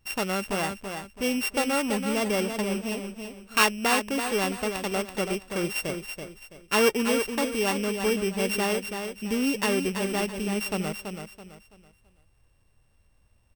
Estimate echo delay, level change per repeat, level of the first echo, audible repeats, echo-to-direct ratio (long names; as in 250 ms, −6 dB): 331 ms, −10.0 dB, −7.0 dB, 3, −6.5 dB